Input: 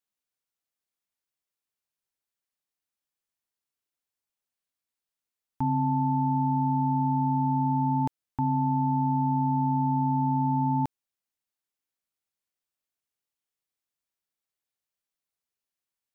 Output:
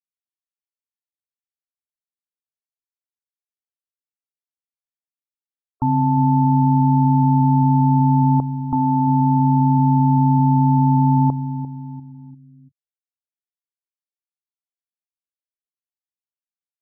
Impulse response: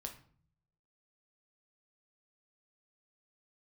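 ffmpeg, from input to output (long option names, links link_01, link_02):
-filter_complex "[0:a]asplit=2[link_01][link_02];[link_02]adelay=332,lowpass=frequency=1100:poles=1,volume=-12dB,asplit=2[link_03][link_04];[link_04]adelay=332,lowpass=frequency=1100:poles=1,volume=0.49,asplit=2[link_05][link_06];[link_06]adelay=332,lowpass=frequency=1100:poles=1,volume=0.49,asplit=2[link_07][link_08];[link_08]adelay=332,lowpass=frequency=1100:poles=1,volume=0.49,asplit=2[link_09][link_10];[link_10]adelay=332,lowpass=frequency=1100:poles=1,volume=0.49[link_11];[link_01][link_03][link_05][link_07][link_09][link_11]amix=inputs=6:normalize=0,atempo=0.96,asplit=2[link_12][link_13];[1:a]atrim=start_sample=2205[link_14];[link_13][link_14]afir=irnorm=-1:irlink=0,volume=-15dB[link_15];[link_12][link_15]amix=inputs=2:normalize=0,afftfilt=real='re*gte(hypot(re,im),0.0112)':imag='im*gte(hypot(re,im),0.0112)':win_size=1024:overlap=0.75,volume=6.5dB"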